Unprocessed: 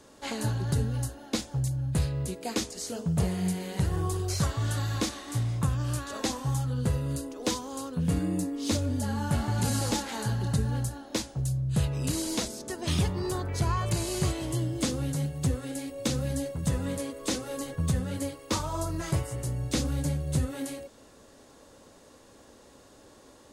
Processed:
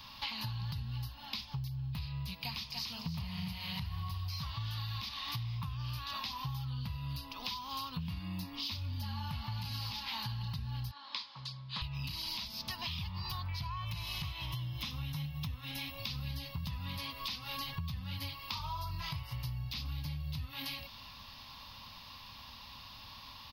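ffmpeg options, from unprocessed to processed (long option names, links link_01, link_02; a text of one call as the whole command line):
ffmpeg -i in.wav -filter_complex "[0:a]asplit=3[link_01][link_02][link_03];[link_01]afade=type=out:start_time=2.43:duration=0.02[link_04];[link_02]aecho=1:1:291|582|873:0.376|0.0977|0.0254,afade=type=in:start_time=2.43:duration=0.02,afade=type=out:start_time=4.54:duration=0.02[link_05];[link_03]afade=type=in:start_time=4.54:duration=0.02[link_06];[link_04][link_05][link_06]amix=inputs=3:normalize=0,asettb=1/sr,asplit=3[link_07][link_08][link_09];[link_07]atrim=end=10.914[link_10];[link_08]atrim=start=10.91:end=11.82,asetpts=PTS-STARTPTS,afade=type=in:duration=0.004:curve=qsin,afade=type=out:start_time=0.906:duration=0.004:curve=qsin,highpass=460,equalizer=frequency=720:width_type=q:width=4:gain=-10,equalizer=frequency=1100:width_type=q:width=4:gain=4,equalizer=frequency=2700:width_type=q:width=4:gain=-7,equalizer=frequency=5800:width_type=q:width=4:gain=-9,lowpass=frequency=6700:width=0.5412,lowpass=frequency=6700:width=1.3066[link_11];[link_09]atrim=start=11.816[link_12];[link_10][link_11]acrossfade=duration=0.004:curve1=hsin:curve2=qsin[link_13];[link_13][link_12]acrossfade=duration=0.004:curve1=qsin:curve2=hsin,asettb=1/sr,asplit=3[link_14][link_15][link_16];[link_14]atrim=end=13.694[link_17];[link_15]atrim=start=13.69:end=15.99,asetpts=PTS-STARTPTS,afade=type=in:duration=0.004:curve=qsin,afade=type=out:start_time=2.296:duration=0.004:curve=qsin,bandreject=frequency=4600:width=5.4[link_18];[link_16]atrim=start=15.986[link_19];[link_17][link_18]acrossfade=duration=0.004:curve1=hsin:curve2=qsin[link_20];[link_20][link_19]acrossfade=duration=0.004:curve1=qsin:curve2=hsin,firequalizer=gain_entry='entry(100,0);entry(220,-8);entry(370,-30);entry(990,5);entry(1500,-8);entry(2500,8);entry(5000,7);entry(7500,-29);entry(14000,9)':delay=0.05:min_phase=1,alimiter=level_in=1dB:limit=-24dB:level=0:latency=1:release=297,volume=-1dB,acompressor=threshold=-43dB:ratio=6,volume=6dB" out.wav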